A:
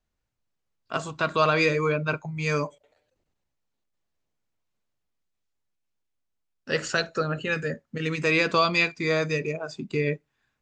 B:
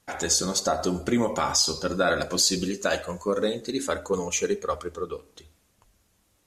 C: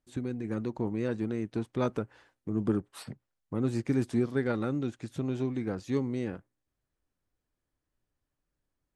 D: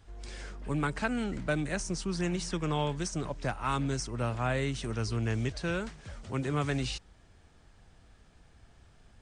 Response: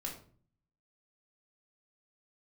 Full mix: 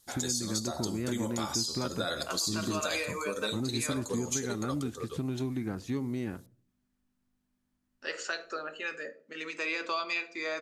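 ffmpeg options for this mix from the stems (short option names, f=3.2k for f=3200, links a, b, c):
-filter_complex "[0:a]aeval=exprs='val(0)+0.00562*(sin(2*PI*50*n/s)+sin(2*PI*2*50*n/s)/2+sin(2*PI*3*50*n/s)/3+sin(2*PI*4*50*n/s)/4+sin(2*PI*5*50*n/s)/5)':c=same,highpass=f=350:w=0.5412,highpass=f=350:w=1.3066,adelay=1350,volume=-8.5dB,asplit=2[a][b];[b]volume=-7dB[c];[1:a]highshelf=f=4.3k:t=q:w=1.5:g=-10.5,volume=-8.5dB[d];[2:a]volume=1.5dB,asplit=2[e][f];[f]volume=-20.5dB[g];[a][e]amix=inputs=2:normalize=0,equalizer=f=490:t=o:w=0.47:g=-9.5,alimiter=limit=-21dB:level=0:latency=1:release=205,volume=0dB[h];[d]aexciter=amount=13.1:drive=7:freq=4.1k,alimiter=limit=-17dB:level=0:latency=1:release=250,volume=0dB[i];[4:a]atrim=start_sample=2205[j];[c][g]amix=inputs=2:normalize=0[k];[k][j]afir=irnorm=-1:irlink=0[l];[h][i][l]amix=inputs=3:normalize=0,acompressor=threshold=-31dB:ratio=2"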